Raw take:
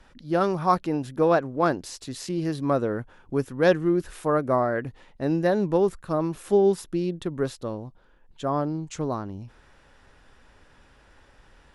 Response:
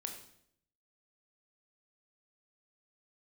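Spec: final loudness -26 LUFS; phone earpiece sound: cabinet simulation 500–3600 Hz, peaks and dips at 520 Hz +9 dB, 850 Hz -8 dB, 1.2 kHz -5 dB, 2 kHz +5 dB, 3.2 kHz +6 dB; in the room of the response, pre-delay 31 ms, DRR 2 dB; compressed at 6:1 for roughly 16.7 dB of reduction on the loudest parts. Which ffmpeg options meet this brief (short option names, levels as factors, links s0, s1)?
-filter_complex "[0:a]acompressor=threshold=0.02:ratio=6,asplit=2[s0][s1];[1:a]atrim=start_sample=2205,adelay=31[s2];[s1][s2]afir=irnorm=-1:irlink=0,volume=0.944[s3];[s0][s3]amix=inputs=2:normalize=0,highpass=500,equalizer=f=520:t=q:w=4:g=9,equalizer=f=850:t=q:w=4:g=-8,equalizer=f=1200:t=q:w=4:g=-5,equalizer=f=2000:t=q:w=4:g=5,equalizer=f=3200:t=q:w=4:g=6,lowpass=f=3600:w=0.5412,lowpass=f=3600:w=1.3066,volume=3.98"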